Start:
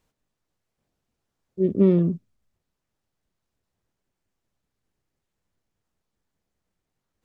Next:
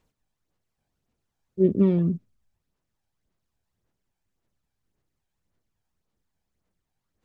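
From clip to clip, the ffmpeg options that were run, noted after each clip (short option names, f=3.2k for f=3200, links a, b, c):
-af "aphaser=in_gain=1:out_gain=1:delay=1.3:decay=0.43:speed=1.8:type=sinusoidal,volume=-2.5dB"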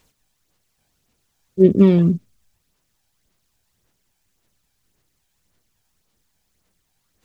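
-af "highshelf=f=2k:g=10.5,volume=7.5dB"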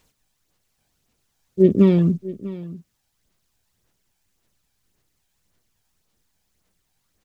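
-af "aecho=1:1:646:0.141,volume=-2dB"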